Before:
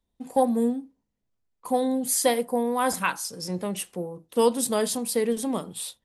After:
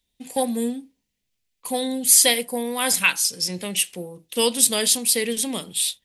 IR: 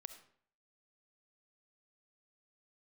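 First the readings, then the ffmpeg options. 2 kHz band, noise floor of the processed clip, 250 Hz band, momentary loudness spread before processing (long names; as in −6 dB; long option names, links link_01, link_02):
+8.5 dB, −77 dBFS, −1.0 dB, 10 LU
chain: -af "highshelf=frequency=1700:width_type=q:width=1.5:gain=12,volume=-1dB"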